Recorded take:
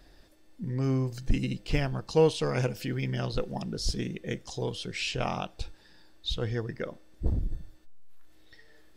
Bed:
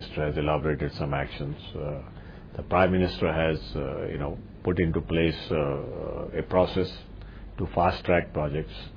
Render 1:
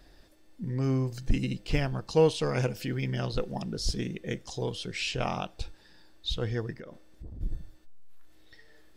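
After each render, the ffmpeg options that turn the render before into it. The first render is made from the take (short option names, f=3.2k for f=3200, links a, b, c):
-filter_complex "[0:a]asplit=3[a][b][c];[a]afade=t=out:st=6.73:d=0.02[d];[b]acompressor=threshold=-39dB:ratio=10:attack=3.2:release=140:knee=1:detection=peak,afade=t=in:st=6.73:d=0.02,afade=t=out:st=7.4:d=0.02[e];[c]afade=t=in:st=7.4:d=0.02[f];[d][e][f]amix=inputs=3:normalize=0"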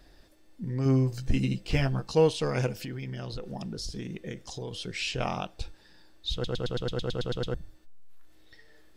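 -filter_complex "[0:a]asettb=1/sr,asplit=3[a][b][c];[a]atrim=end=0.844[d];[b]atrim=start=0.84:end=2.15,asetpts=PTS-STARTPTS,afade=t=in:d=0.004:c=qsin,afade=t=out:st=1.306:d=0.004:c=qsin,asplit=2[e][f];[f]adelay=15,volume=-4dB[g];[e][g]amix=inputs=2:normalize=0,atrim=end_sample=57771[h];[c]atrim=start=2.146[i];[d][h]acrossfade=d=0.004:c1=hsin:c2=qsin[j];[j][i]acrossfade=d=0.004:c1=qsin:c2=hsin,asettb=1/sr,asplit=3[k][l][m];[k]atrim=end=2.764[n];[l]atrim=start=2.76:end=4.73,asetpts=PTS-STARTPTS,afade=t=in:d=0.004:c=qsin,afade=t=out:st=1.966:d=0.004:c=qsin,acompressor=threshold=-32dB:ratio=6:attack=3.2:release=140:knee=1:detection=peak[o];[m]atrim=start=4.726[p];[n][o]acrossfade=d=0.004:c1=hsin:c2=qsin[q];[q][p]acrossfade=d=0.004:c1=qsin:c2=hsin,asplit=12[r][s][t][u][v][w][x][y][z][aa][ab][ac];[r]atrim=end=6.442[ad];[s]atrim=start=6.328:end=6.442[ae];[t]atrim=start=6.328:end=6.442[af];[u]atrim=start=6.328:end=6.442[ag];[v]atrim=start=6.328:end=6.442[ah];[w]atrim=start=6.328:end=6.442[ai];[x]atrim=start=6.328:end=6.442[aj];[y]atrim=start=6.328:end=6.442[ak];[z]atrim=start=6.328:end=6.442[al];[aa]atrim=start=6.328:end=6.442[am];[ab]atrim=start=6.328:end=6.442[an];[ac]atrim=start=7.538[ao];[ad][ae]acrossfade=d=0.004:c1=hsin:c2=hsin[ap];[ap][af]acrossfade=d=0.004:c1=hsin:c2=hsin[aq];[aq][ag]acrossfade=d=0.004:c1=hsin:c2=hsin[ar];[ar][ah]acrossfade=d=0.004:c1=hsin:c2=hsin[as];[as][ai]acrossfade=d=0.004:c1=hsin:c2=hsin[at];[at][aj]acrossfade=d=0.004:c1=hsin:c2=hsin[au];[au][ak]acrossfade=d=0.004:c1=hsin:c2=hsin[av];[av][al]acrossfade=d=0.004:c1=hsin:c2=hsin[aw];[aw][am]acrossfade=d=0.004:c1=hsin:c2=hsin[ax];[ax][an]acrossfade=d=0.004:c1=hsin:c2=hsin[ay];[ay][ao]acrossfade=d=0.004:c1=hsin:c2=hsin"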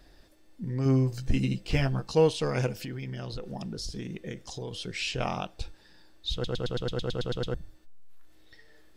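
-af anull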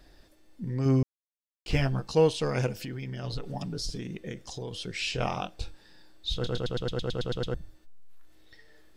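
-filter_complex "[0:a]asettb=1/sr,asplit=3[a][b][c];[a]atrim=end=3.234[d];[b]atrim=start=3.23:end=3.98,asetpts=PTS-STARTPTS,afade=t=in:d=0.004:c=qsin,afade=t=out:st=0.746:d=0.004:c=qsin,aecho=1:1:7:0.84,atrim=end_sample=33075[e];[c]atrim=start=3.976[f];[d][e]acrossfade=d=0.004:c1=hsin:c2=qsin[g];[g][f]acrossfade=d=0.004:c1=qsin:c2=hsin,asettb=1/sr,asplit=3[h][i][j];[h]atrim=end=5.014[k];[i]atrim=start=5.01:end=6.6,asetpts=PTS-STARTPTS,afade=t=in:d=0.004:c=qsin,afade=t=out:st=1.586:d=0.004:c=qsin,asplit=2[l][m];[m]adelay=25,volume=-8dB[n];[l][n]amix=inputs=2:normalize=0,atrim=end_sample=70119[o];[j]atrim=start=6.596[p];[k][o]acrossfade=d=0.004:c1=hsin:c2=qsin[q];[q][p]acrossfade=d=0.004:c1=qsin:c2=hsin,asplit=3[r][s][t];[r]atrim=end=1.03,asetpts=PTS-STARTPTS,afade=t=out:st=1.026:d=0.004:c=hsin[u];[s]atrim=start=1.03:end=1.66,asetpts=PTS-STARTPTS,volume=0[v];[t]atrim=start=1.66,asetpts=PTS-STARTPTS,afade=t=in:d=0.004:c=hsin[w];[u][v][w]concat=n=3:v=0:a=1"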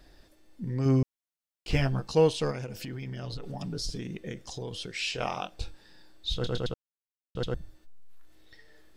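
-filter_complex "[0:a]asettb=1/sr,asplit=3[a][b][c];[a]atrim=end=2.514[d];[b]atrim=start=2.51:end=3.64,asetpts=PTS-STARTPTS,afade=t=in:d=0.004:c=qsin,afade=t=out:st=1.126:d=0.004:c=qsin,acompressor=threshold=-32dB:ratio=6:attack=3.2:release=140:knee=1:detection=peak[e];[c]atrim=start=3.636[f];[d][e]acrossfade=d=0.004:c1=hsin:c2=qsin[g];[g][f]acrossfade=d=0.004:c1=qsin:c2=hsin,asettb=1/sr,asplit=3[h][i][j];[h]atrim=end=4.864[k];[i]atrim=start=4.86:end=5.52,asetpts=PTS-STARTPTS,afade=t=in:d=0.004:c=qsin,afade=t=out:st=0.656:d=0.004:c=qsin,lowshelf=f=220:g=-10.5[l];[j]atrim=start=5.516[m];[k][l]acrossfade=d=0.004:c1=hsin:c2=qsin[n];[n][m]acrossfade=d=0.004:c1=qsin:c2=hsin,asplit=3[o][p][q];[o]atrim=end=6.74,asetpts=PTS-STARTPTS,afade=t=out:st=6.736:d=0.004:c=hsin[r];[p]atrim=start=6.74:end=7.35,asetpts=PTS-STARTPTS,volume=0[s];[q]atrim=start=7.35,asetpts=PTS-STARTPTS,afade=t=in:d=0.004:c=hsin[t];[r][s][t]concat=n=3:v=0:a=1"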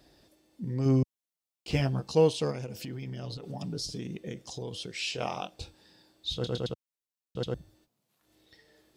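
-af "highpass=88,equalizer=f=1.6k:t=o:w=1.1:g=-6"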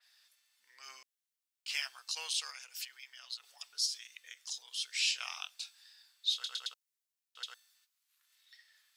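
-af "highpass=f=1.4k:w=0.5412,highpass=f=1.4k:w=1.3066,adynamicequalizer=threshold=0.00316:dfrequency=3700:dqfactor=0.7:tfrequency=3700:tqfactor=0.7:attack=5:release=100:ratio=0.375:range=3:mode=boostabove:tftype=highshelf"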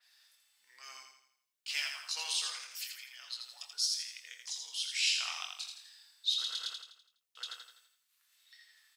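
-filter_complex "[0:a]asplit=2[a][b];[b]adelay=24,volume=-8dB[c];[a][c]amix=inputs=2:normalize=0,aecho=1:1:83|166|249|332|415|498:0.562|0.253|0.114|0.0512|0.0231|0.0104"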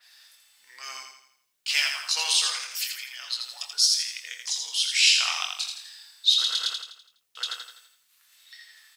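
-af "volume=11.5dB"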